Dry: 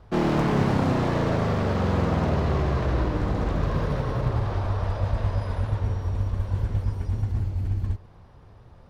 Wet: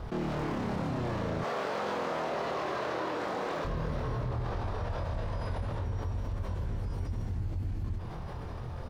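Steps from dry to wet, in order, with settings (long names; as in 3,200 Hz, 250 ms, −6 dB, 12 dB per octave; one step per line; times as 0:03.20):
0:01.41–0:03.65: high-pass filter 460 Hz 12 dB per octave
brickwall limiter −22 dBFS, peak gain reduction 11 dB
double-tracking delay 25 ms −2 dB
envelope flattener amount 70%
level −8 dB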